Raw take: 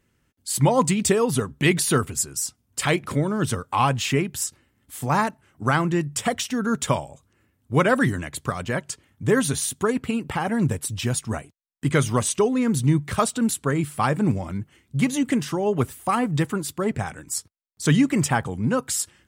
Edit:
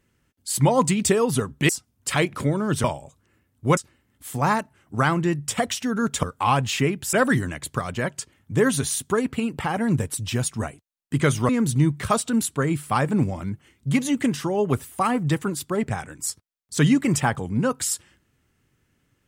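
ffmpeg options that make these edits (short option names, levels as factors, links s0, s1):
-filter_complex "[0:a]asplit=7[s0][s1][s2][s3][s4][s5][s6];[s0]atrim=end=1.692[s7];[s1]atrim=start=2.398:end=3.552[s8];[s2]atrim=start=6.908:end=7.842[s9];[s3]atrim=start=4.448:end=6.912[s10];[s4]atrim=start=3.548:end=4.452[s11];[s5]atrim=start=7.838:end=12.202[s12];[s6]atrim=start=12.568[s13];[s7][s8]acrossfade=d=0.004:c1=hsin:c2=hsin[s14];[s14][s9]acrossfade=d=0.004:c1=hsin:c2=hsin[s15];[s15][s10]acrossfade=d=0.004:c1=hsin:c2=hsin[s16];[s16][s11]acrossfade=d=0.004:c1=hsin:c2=hsin[s17];[s17][s12]acrossfade=d=0.004:c1=hsin:c2=hsin[s18];[s18][s13]acrossfade=d=0.004:c1=hsin:c2=hsin"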